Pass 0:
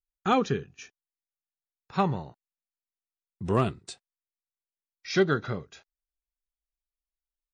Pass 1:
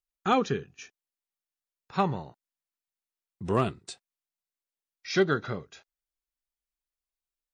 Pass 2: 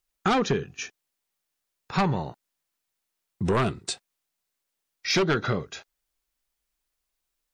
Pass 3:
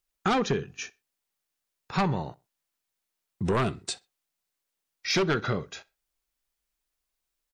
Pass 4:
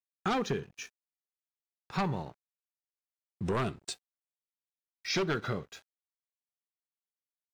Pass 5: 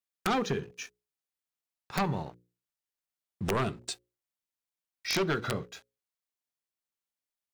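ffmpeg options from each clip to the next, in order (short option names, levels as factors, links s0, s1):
-af "lowshelf=f=160:g=-4.5"
-af "aeval=exprs='0.251*sin(PI/2*2.24*val(0)/0.251)':c=same,acompressor=threshold=0.0891:ratio=4"
-filter_complex "[0:a]asplit=2[s0][s1];[s1]adelay=63,lowpass=f=4800:p=1,volume=0.0708,asplit=2[s2][s3];[s3]adelay=63,lowpass=f=4800:p=1,volume=0.27[s4];[s0][s2][s4]amix=inputs=3:normalize=0,volume=0.794"
-af "aeval=exprs='sgn(val(0))*max(abs(val(0))-0.00299,0)':c=same,volume=0.562"
-af "aeval=exprs='(mod(12.6*val(0)+1,2)-1)/12.6':c=same,bandreject=f=60:t=h:w=6,bandreject=f=120:t=h:w=6,bandreject=f=180:t=h:w=6,bandreject=f=240:t=h:w=6,bandreject=f=300:t=h:w=6,bandreject=f=360:t=h:w=6,bandreject=f=420:t=h:w=6,bandreject=f=480:t=h:w=6,bandreject=f=540:t=h:w=6,volume=1.26"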